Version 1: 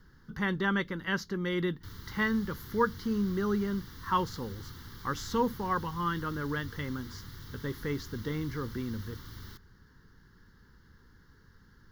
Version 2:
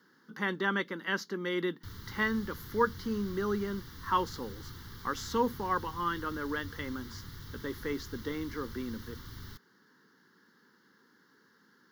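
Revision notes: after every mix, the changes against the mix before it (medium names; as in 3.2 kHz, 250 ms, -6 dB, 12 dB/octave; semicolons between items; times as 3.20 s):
speech: add high-pass 220 Hz 24 dB/octave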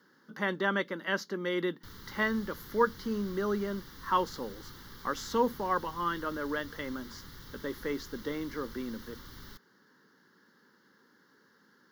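background: add peaking EQ 94 Hz -10.5 dB 0.96 oct; master: add peaking EQ 620 Hz +11.5 dB 0.34 oct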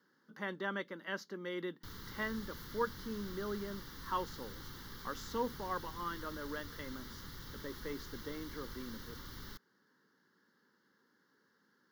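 speech -9.0 dB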